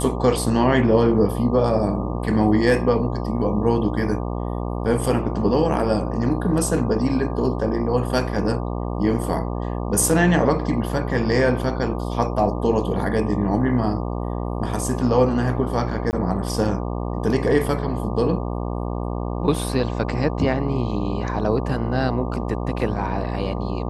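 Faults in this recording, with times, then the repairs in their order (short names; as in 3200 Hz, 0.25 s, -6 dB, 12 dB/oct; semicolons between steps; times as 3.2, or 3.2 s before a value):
buzz 60 Hz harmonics 20 -26 dBFS
16.11–16.13 gap 19 ms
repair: de-hum 60 Hz, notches 20; interpolate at 16.11, 19 ms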